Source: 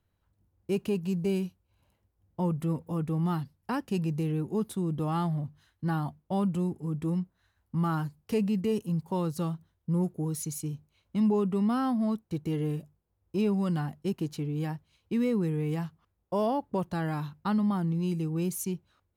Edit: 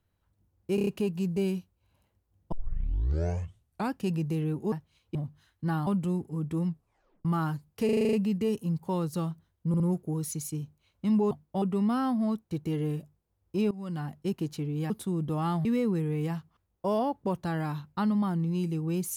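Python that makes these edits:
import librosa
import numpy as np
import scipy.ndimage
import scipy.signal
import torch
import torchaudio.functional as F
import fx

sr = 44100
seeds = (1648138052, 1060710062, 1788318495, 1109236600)

y = fx.edit(x, sr, fx.stutter(start_s=0.75, slice_s=0.03, count=5),
    fx.tape_start(start_s=2.4, length_s=1.48),
    fx.swap(start_s=4.6, length_s=0.75, other_s=14.7, other_length_s=0.43),
    fx.move(start_s=6.07, length_s=0.31, to_s=11.42),
    fx.tape_stop(start_s=7.18, length_s=0.58),
    fx.stutter(start_s=8.36, slice_s=0.04, count=8),
    fx.stutter(start_s=9.91, slice_s=0.06, count=3),
    fx.fade_in_from(start_s=13.51, length_s=0.47, floor_db=-19.0), tone=tone)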